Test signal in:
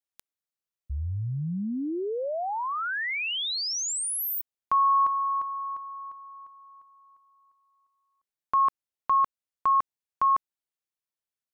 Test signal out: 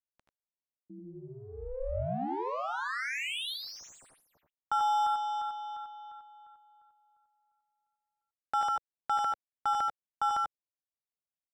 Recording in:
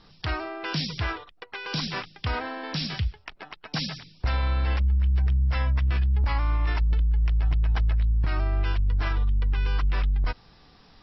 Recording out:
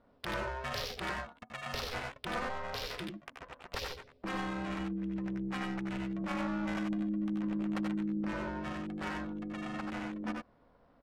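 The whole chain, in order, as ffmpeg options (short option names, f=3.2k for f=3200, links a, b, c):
-filter_complex "[0:a]adynamicsmooth=sensitivity=5:basefreq=980,lowshelf=f=210:t=q:w=1.5:g=-9.5,aeval=exprs='val(0)*sin(2*PI*260*n/s)':c=same,asplit=2[a][b];[b]aecho=0:1:79|93:0.447|0.596[c];[a][c]amix=inputs=2:normalize=0,volume=-3.5dB"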